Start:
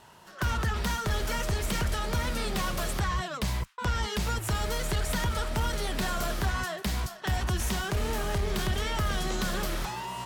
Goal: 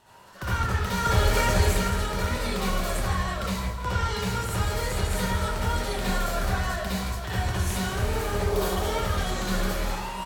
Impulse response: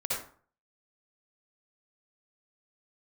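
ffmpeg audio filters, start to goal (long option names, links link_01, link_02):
-filter_complex "[0:a]asettb=1/sr,asplit=3[link_01][link_02][link_03];[link_01]atrim=end=0.974[link_04];[link_02]atrim=start=0.97:end=1.69,asetpts=PTS-STARTPTS,afade=type=in:duration=0.004:curve=qsin,afade=type=out:start_time=0.716:duration=0.004:curve=qsin,acontrast=38[link_05];[link_03]atrim=start=1.686[link_06];[link_04][link_05]acrossfade=duration=0.004:curve1=hsin:curve2=qsin[link_07];[link_07][link_06]acrossfade=duration=0.004:curve1=qsin:curve2=hsin,asettb=1/sr,asplit=3[link_08][link_09][link_10];[link_08]atrim=end=8.414[link_11];[link_09]atrim=start=8.41:end=8.92,asetpts=PTS-STARTPTS,afade=type=in:duration=0.004:curve=qsin,afade=type=out:start_time=0.506:duration=0.004:curve=qsin,equalizer=frequency=125:width_type=o:width=1:gain=-11,equalizer=frequency=500:width_type=o:width=1:gain=6,equalizer=frequency=1000:width_type=o:width=1:gain=6,equalizer=frequency=2000:width_type=o:width=1:gain=-6,equalizer=frequency=16000:width_type=o:width=1:gain=7[link_12];[link_10]atrim=start=8.916[link_13];[link_11][link_12]acrossfade=duration=0.004:curve1=hsin:curve2=qsin[link_14];[link_14][link_13]acrossfade=duration=0.004:curve1=qsin:curve2=hsin,aecho=1:1:163|326|489|652|815|978|1141:0.282|0.166|0.0981|0.0579|0.0342|0.0201|0.0119[link_15];[1:a]atrim=start_sample=2205[link_16];[link_15][link_16]afir=irnorm=-1:irlink=0,volume=-3.5dB"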